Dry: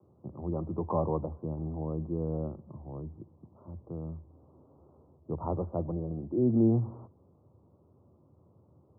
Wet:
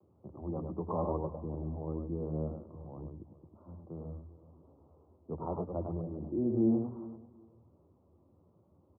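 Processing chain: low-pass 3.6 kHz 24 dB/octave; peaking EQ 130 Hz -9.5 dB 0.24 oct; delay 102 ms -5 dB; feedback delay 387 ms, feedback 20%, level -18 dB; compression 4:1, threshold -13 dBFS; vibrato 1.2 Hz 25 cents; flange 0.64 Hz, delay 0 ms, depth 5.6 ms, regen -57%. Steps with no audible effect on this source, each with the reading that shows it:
low-pass 3.6 kHz: input has nothing above 1.1 kHz; compression, threshold -13 dBFS: peak at its input -15.0 dBFS

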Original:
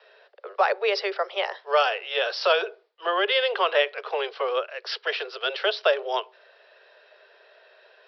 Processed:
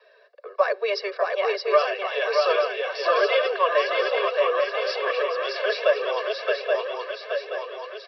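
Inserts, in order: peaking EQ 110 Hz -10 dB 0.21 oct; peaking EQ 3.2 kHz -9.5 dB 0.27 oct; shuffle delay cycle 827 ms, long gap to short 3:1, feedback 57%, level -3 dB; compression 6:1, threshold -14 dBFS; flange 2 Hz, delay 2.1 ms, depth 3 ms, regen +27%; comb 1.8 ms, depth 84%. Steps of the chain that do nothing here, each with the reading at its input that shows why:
peaking EQ 110 Hz: input has nothing below 320 Hz

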